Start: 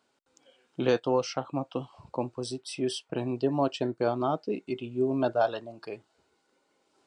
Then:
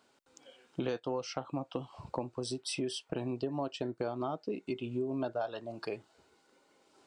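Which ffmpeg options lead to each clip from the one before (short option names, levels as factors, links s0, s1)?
-af "acompressor=threshold=0.0141:ratio=5,volume=1.58"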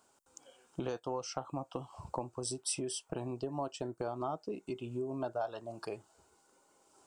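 -af "equalizer=f=125:t=o:w=1:g=-5,equalizer=f=250:t=o:w=1:g=-8,equalizer=f=500:t=o:w=1:g=-6,equalizer=f=2000:t=o:w=1:g=-11,equalizer=f=4000:t=o:w=1:g=-10,equalizer=f=8000:t=o:w=1:g=5,volume=1.78"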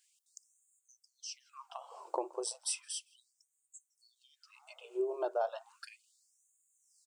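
-filter_complex "[0:a]lowshelf=f=460:g=9,asplit=2[s0][s1];[s1]adelay=165,lowpass=f=2600:p=1,volume=0.0841,asplit=2[s2][s3];[s3]adelay=165,lowpass=f=2600:p=1,volume=0.53,asplit=2[s4][s5];[s5]adelay=165,lowpass=f=2600:p=1,volume=0.53,asplit=2[s6][s7];[s7]adelay=165,lowpass=f=2600:p=1,volume=0.53[s8];[s0][s2][s4][s6][s8]amix=inputs=5:normalize=0,afftfilt=real='re*gte(b*sr/1024,320*pow(6600/320,0.5+0.5*sin(2*PI*0.34*pts/sr)))':imag='im*gte(b*sr/1024,320*pow(6600/320,0.5+0.5*sin(2*PI*0.34*pts/sr)))':win_size=1024:overlap=0.75"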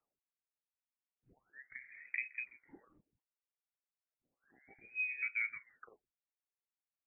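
-af "lowpass=f=2500:t=q:w=0.5098,lowpass=f=2500:t=q:w=0.6013,lowpass=f=2500:t=q:w=0.9,lowpass=f=2500:t=q:w=2.563,afreqshift=-2900,volume=0.631"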